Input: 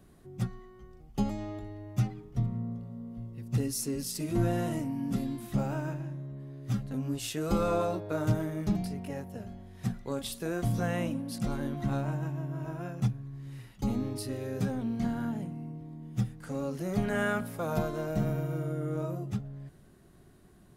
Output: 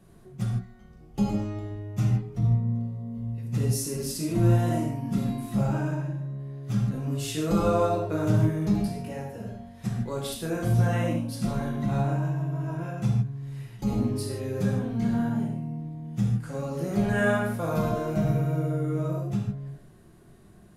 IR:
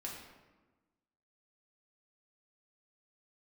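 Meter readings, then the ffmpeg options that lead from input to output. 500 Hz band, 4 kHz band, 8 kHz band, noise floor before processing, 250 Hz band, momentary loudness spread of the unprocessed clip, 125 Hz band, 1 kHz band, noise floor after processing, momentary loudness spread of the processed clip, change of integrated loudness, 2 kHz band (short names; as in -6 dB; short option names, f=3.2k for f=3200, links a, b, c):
+4.5 dB, +3.0 dB, +3.0 dB, -57 dBFS, +5.0 dB, 12 LU, +7.0 dB, +4.5 dB, -52 dBFS, 11 LU, +5.5 dB, +4.5 dB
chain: -filter_complex "[1:a]atrim=start_sample=2205,atrim=end_sample=4410,asetrate=26460,aresample=44100[a];[0:a][a]afir=irnorm=-1:irlink=0,volume=2.5dB"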